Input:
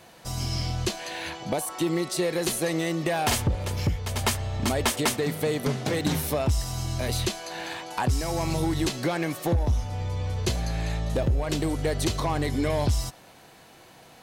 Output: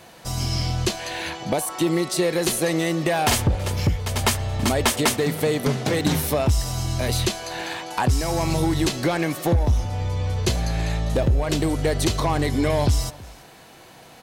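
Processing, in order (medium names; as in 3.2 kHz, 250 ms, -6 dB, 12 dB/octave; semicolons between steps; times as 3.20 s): delay 328 ms -22.5 dB; trim +4.5 dB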